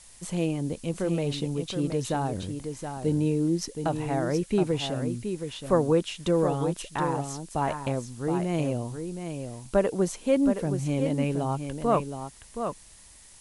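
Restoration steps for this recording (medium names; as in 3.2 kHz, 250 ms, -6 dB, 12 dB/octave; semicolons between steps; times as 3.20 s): noise print and reduce 24 dB; inverse comb 721 ms -7.5 dB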